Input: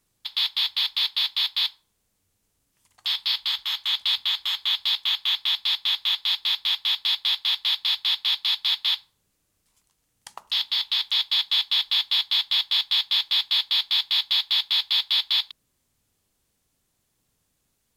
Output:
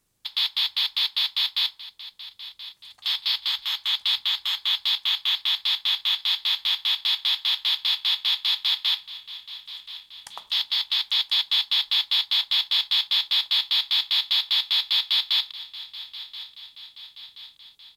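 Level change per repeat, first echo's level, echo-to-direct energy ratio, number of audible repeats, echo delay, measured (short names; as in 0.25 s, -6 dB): -5.5 dB, -16.0 dB, -14.5 dB, 4, 1.028 s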